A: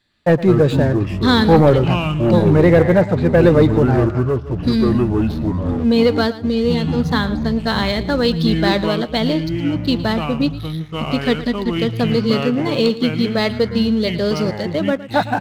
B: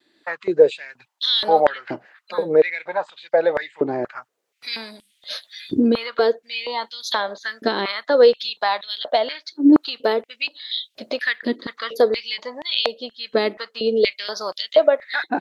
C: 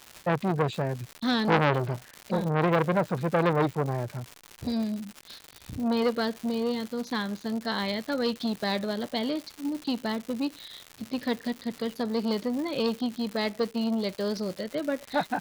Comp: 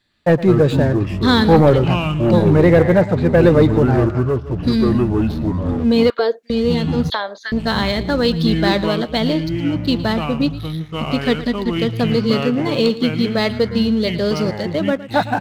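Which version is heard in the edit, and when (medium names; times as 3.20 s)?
A
6.10–6.50 s: from B
7.10–7.52 s: from B
not used: C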